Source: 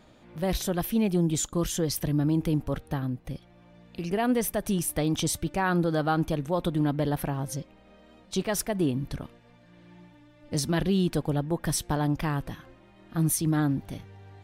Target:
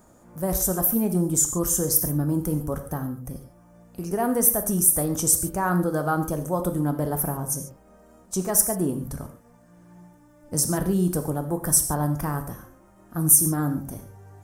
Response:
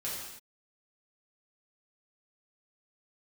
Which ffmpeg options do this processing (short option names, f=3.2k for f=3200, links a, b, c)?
-filter_complex "[0:a]aexciter=amount=12:drive=5.7:freq=5.8k,highshelf=f=1.8k:t=q:w=1.5:g=-10,asplit=2[a][b];[1:a]atrim=start_sample=2205,atrim=end_sample=6615[c];[b][c]afir=irnorm=-1:irlink=0,volume=-6dB[d];[a][d]amix=inputs=2:normalize=0,volume=-2dB"